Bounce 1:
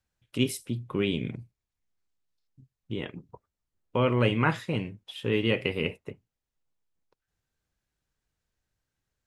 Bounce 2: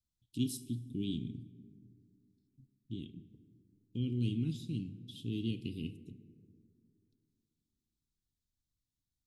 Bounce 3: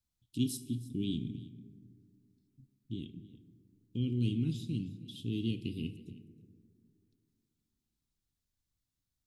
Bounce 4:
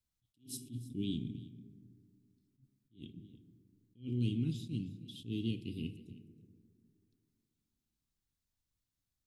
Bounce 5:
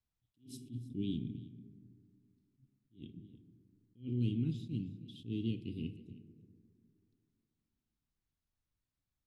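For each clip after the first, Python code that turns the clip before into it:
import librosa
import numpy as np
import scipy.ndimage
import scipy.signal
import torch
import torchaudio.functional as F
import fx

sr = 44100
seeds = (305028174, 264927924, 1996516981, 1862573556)

y1 = scipy.signal.sosfilt(scipy.signal.ellip(3, 1.0, 40, [300.0, 3600.0], 'bandstop', fs=sr, output='sos'), x)
y1 = fx.rev_plate(y1, sr, seeds[0], rt60_s=2.7, hf_ratio=0.35, predelay_ms=0, drr_db=12.5)
y1 = y1 * librosa.db_to_amplitude(-6.0)
y2 = y1 + 10.0 ** (-19.0 / 20.0) * np.pad(y1, (int(315 * sr / 1000.0), 0))[:len(y1)]
y2 = y2 * librosa.db_to_amplitude(2.0)
y3 = fx.attack_slew(y2, sr, db_per_s=220.0)
y3 = y3 * librosa.db_to_amplitude(-2.0)
y4 = fx.lowpass(y3, sr, hz=2300.0, slope=6)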